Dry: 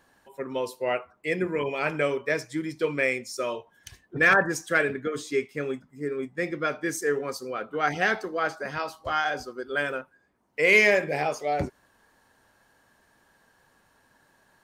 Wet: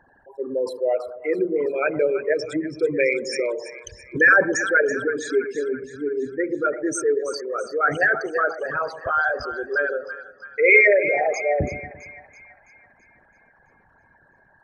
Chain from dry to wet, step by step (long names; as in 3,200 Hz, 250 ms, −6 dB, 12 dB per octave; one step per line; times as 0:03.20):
spectral envelope exaggerated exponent 3
echo with a time of its own for lows and highs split 990 Hz, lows 114 ms, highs 331 ms, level −11.5 dB
0:03.00–0:03.40: multiband upward and downward compressor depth 70%
level +5 dB